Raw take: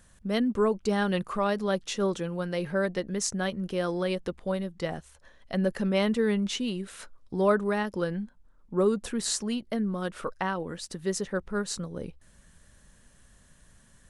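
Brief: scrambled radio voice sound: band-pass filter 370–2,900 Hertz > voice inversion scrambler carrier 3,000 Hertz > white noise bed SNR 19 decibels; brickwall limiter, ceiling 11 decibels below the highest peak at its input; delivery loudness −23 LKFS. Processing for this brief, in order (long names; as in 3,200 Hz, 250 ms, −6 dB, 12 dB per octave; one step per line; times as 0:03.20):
brickwall limiter −22 dBFS
band-pass filter 370–2,900 Hz
voice inversion scrambler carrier 3,000 Hz
white noise bed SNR 19 dB
level +10.5 dB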